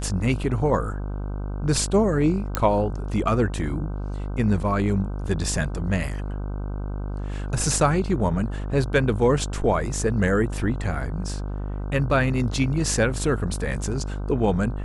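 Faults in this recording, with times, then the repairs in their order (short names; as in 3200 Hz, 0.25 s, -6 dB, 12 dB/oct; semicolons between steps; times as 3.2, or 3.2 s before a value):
buzz 50 Hz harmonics 31 -29 dBFS
2.55 pop -7 dBFS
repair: de-click; de-hum 50 Hz, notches 31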